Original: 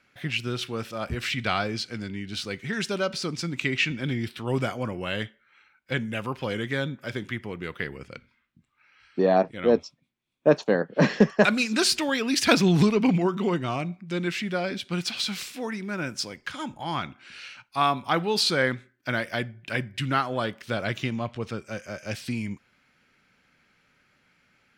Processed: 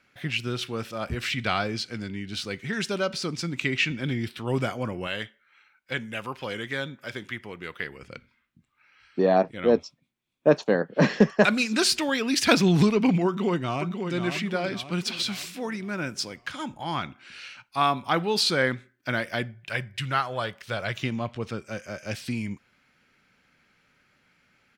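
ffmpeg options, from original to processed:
ffmpeg -i in.wav -filter_complex "[0:a]asettb=1/sr,asplit=3[link_01][link_02][link_03];[link_01]atrim=end=5.074[link_04];[link_02]atrim=start=5.07:end=8.03,asetpts=PTS-STARTPTS,afade=type=in:duration=0.004:curve=qsin,afade=type=out:start_time=2.956:duration=0.004:curve=qsin,lowshelf=frequency=430:gain=-8[link_05];[link_03]atrim=start=8.026[link_06];[link_04][link_05]acrossfade=duration=0.004:curve1=hsin:curve2=qsin[link_07];[link_07][link_06]acrossfade=duration=0.004:curve1=qsin:curve2=hsin,asplit=2[link_08][link_09];[link_09]afade=type=in:start_time=13.27:duration=0.01,afade=type=out:start_time=14.14:duration=0.01,aecho=0:1:540|1080|1620|2160|2700:0.446684|0.201008|0.0904534|0.040704|0.0183168[link_10];[link_08][link_10]amix=inputs=2:normalize=0,asettb=1/sr,asplit=3[link_11][link_12][link_13];[link_11]atrim=end=19.544[link_14];[link_12]atrim=start=19.54:end=21.02,asetpts=PTS-STARTPTS,afade=type=in:duration=0.004:curve=qsin,afade=type=out:start_time=1.476:duration=0.004:curve=qsin,equalizer=frequency=270:width=1.5:gain=-11.5[link_15];[link_13]atrim=start=21.016[link_16];[link_14][link_15]acrossfade=duration=0.004:curve1=hsin:curve2=qsin[link_17];[link_17][link_16]acrossfade=duration=0.004:curve1=qsin:curve2=hsin" out.wav

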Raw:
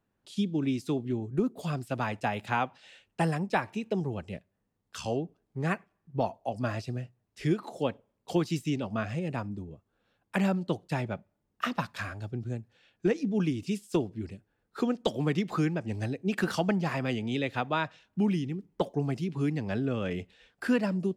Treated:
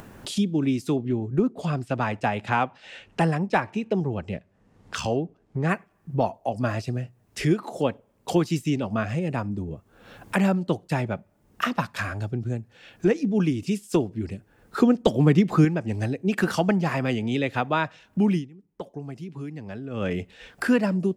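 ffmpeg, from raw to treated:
ffmpeg -i in.wav -filter_complex "[0:a]asettb=1/sr,asplit=3[link_01][link_02][link_03];[link_01]atrim=end=0.964[link_04];[link_02]atrim=start=0.96:end=5.69,asetpts=PTS-STARTPTS,afade=type=in:duration=0.004:curve=qsin,afade=type=out:start_time=4.726:duration=0.004:curve=qsin,adynamicsmooth=sensitivity=6.5:basefreq=6500[link_05];[link_03]atrim=start=5.686[link_06];[link_04][link_05]acrossfade=duration=0.004:curve1=hsin:curve2=qsin[link_07];[link_07][link_06]acrossfade=duration=0.004:curve1=qsin:curve2=hsin,asettb=1/sr,asplit=3[link_08][link_09][link_10];[link_08]atrim=end=14.804[link_11];[link_09]atrim=start=14.8:end=15.65,asetpts=PTS-STARTPTS,afade=type=in:duration=0.004:curve=qsin,afade=type=out:start_time=0.846:duration=0.004:curve=qsin,lowshelf=frequency=390:gain=7[link_12];[link_10]atrim=start=15.646[link_13];[link_11][link_12]acrossfade=duration=0.004:curve1=hsin:curve2=qsin[link_14];[link_14][link_13]acrossfade=duration=0.004:curve1=qsin:curve2=hsin,asplit=3[link_15][link_16][link_17];[link_15]atrim=end=18.51,asetpts=PTS-STARTPTS,afade=type=out:start_time=18.37:duration=0.14:curve=qua:silence=0.0794328[link_18];[link_16]atrim=start=18.51:end=19.89,asetpts=PTS-STARTPTS,volume=-22dB[link_19];[link_17]atrim=start=19.89,asetpts=PTS-STARTPTS,afade=type=in:duration=0.14:curve=qua:silence=0.0794328[link_20];[link_18][link_19][link_20]concat=n=3:v=0:a=1,equalizer=frequency=3900:width=1.6:gain=-3.5,acompressor=mode=upward:threshold=-29dB:ratio=2.5,volume=5.5dB" out.wav

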